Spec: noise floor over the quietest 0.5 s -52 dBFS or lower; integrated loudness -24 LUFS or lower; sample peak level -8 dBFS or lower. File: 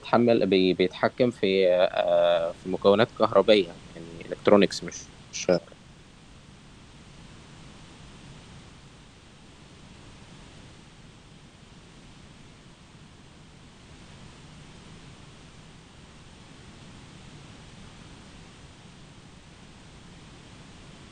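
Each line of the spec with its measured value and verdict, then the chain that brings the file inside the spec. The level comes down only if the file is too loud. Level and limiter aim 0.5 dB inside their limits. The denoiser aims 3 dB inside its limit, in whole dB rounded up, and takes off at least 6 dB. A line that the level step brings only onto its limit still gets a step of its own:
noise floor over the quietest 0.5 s -51 dBFS: fail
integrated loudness -23.5 LUFS: fail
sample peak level -4.0 dBFS: fail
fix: denoiser 6 dB, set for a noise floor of -51 dBFS; gain -1 dB; limiter -8.5 dBFS

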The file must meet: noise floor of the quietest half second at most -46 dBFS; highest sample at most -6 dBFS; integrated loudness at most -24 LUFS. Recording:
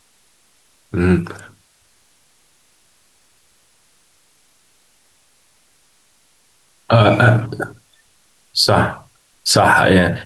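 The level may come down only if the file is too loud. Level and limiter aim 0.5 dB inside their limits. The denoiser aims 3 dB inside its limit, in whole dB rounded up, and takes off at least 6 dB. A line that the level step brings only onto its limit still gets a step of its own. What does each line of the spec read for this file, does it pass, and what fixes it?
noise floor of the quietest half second -57 dBFS: OK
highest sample -2.0 dBFS: fail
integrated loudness -15.0 LUFS: fail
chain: gain -9.5 dB

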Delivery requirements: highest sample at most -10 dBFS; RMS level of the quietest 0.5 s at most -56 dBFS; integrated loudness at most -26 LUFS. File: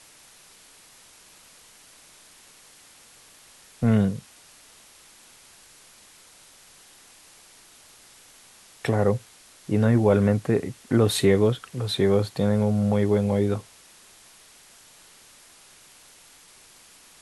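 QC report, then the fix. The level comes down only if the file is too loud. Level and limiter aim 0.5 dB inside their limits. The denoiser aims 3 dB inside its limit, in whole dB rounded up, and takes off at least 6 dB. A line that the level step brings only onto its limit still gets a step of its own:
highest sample -7.5 dBFS: fail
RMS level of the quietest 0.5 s -52 dBFS: fail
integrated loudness -23.0 LUFS: fail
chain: denoiser 6 dB, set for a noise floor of -52 dBFS; gain -3.5 dB

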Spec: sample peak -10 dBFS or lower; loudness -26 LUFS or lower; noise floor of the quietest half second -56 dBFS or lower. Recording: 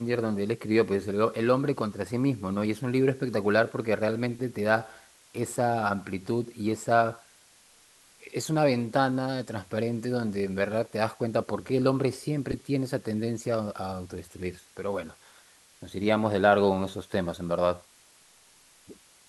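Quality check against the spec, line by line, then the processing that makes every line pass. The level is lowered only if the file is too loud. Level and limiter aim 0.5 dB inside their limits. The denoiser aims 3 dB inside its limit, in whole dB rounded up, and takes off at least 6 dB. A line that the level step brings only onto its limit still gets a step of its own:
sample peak -6.5 dBFS: fail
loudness -28.0 LUFS: OK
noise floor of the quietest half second -58 dBFS: OK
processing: limiter -10.5 dBFS

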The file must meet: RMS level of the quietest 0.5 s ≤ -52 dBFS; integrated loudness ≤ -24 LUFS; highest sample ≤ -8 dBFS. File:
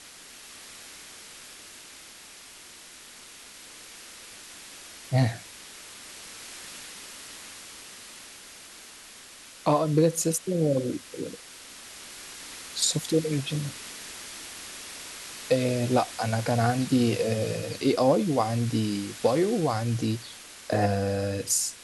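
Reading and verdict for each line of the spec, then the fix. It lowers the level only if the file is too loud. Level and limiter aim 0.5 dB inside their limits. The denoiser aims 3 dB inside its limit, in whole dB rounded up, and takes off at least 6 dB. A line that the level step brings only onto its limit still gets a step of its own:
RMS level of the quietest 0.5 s -48 dBFS: fail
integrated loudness -27.0 LUFS: OK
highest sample -10.0 dBFS: OK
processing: denoiser 7 dB, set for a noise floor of -48 dBFS

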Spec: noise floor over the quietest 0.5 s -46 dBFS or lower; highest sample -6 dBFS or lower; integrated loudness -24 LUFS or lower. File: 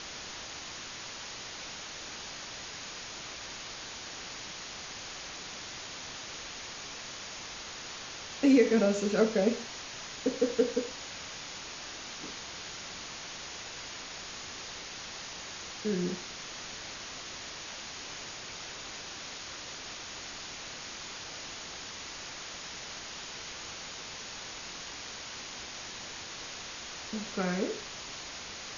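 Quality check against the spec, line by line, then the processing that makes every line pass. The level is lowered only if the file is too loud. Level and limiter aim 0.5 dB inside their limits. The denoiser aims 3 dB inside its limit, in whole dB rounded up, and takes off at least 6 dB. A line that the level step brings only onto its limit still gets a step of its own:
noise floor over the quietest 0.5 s -43 dBFS: fail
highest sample -12.0 dBFS: OK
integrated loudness -36.0 LUFS: OK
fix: denoiser 6 dB, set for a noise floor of -43 dBFS

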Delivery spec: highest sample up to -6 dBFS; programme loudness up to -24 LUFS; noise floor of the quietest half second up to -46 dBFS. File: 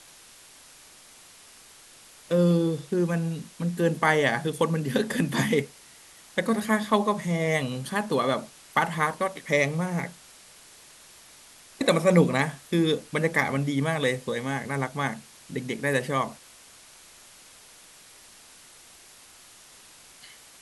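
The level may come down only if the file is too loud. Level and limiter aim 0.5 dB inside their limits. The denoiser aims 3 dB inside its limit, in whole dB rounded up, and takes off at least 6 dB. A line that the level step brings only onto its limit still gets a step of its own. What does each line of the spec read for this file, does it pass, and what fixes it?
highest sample -6.5 dBFS: OK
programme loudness -26.0 LUFS: OK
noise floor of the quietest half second -51 dBFS: OK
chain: none

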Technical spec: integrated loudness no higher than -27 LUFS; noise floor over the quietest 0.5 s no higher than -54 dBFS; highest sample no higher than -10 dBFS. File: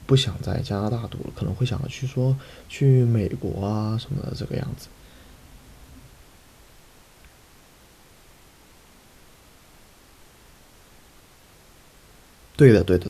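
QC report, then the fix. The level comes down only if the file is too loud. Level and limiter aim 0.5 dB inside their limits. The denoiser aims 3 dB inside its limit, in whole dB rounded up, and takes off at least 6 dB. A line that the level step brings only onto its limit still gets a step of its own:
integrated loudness -23.0 LUFS: fail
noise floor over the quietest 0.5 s -52 dBFS: fail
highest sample -2.5 dBFS: fail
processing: gain -4.5 dB; limiter -10.5 dBFS

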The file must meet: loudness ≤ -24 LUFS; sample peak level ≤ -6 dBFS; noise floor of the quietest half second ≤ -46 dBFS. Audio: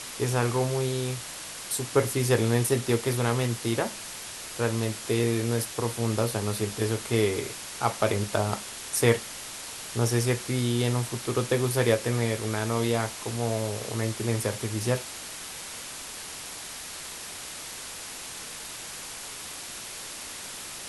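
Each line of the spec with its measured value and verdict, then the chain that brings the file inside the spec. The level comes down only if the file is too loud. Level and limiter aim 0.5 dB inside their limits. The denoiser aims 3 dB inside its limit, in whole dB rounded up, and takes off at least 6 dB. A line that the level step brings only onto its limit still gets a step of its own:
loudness -28.5 LUFS: OK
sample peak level -7.0 dBFS: OK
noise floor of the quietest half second -39 dBFS: fail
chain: denoiser 10 dB, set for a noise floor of -39 dBFS

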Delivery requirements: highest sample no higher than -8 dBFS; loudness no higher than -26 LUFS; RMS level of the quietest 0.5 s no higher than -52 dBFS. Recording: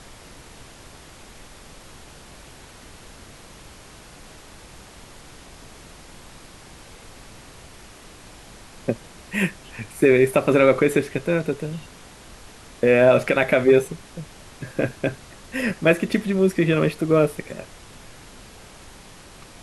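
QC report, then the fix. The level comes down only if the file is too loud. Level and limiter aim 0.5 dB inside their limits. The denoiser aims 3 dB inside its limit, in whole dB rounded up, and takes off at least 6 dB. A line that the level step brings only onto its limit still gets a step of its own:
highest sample -4.0 dBFS: fail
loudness -20.5 LUFS: fail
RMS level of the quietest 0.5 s -44 dBFS: fail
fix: denoiser 6 dB, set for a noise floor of -44 dBFS; gain -6 dB

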